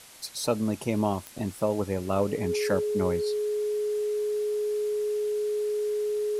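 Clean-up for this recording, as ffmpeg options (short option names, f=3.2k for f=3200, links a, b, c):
-af "adeclick=t=4,bandreject=f=420:w=30,afwtdn=0.004"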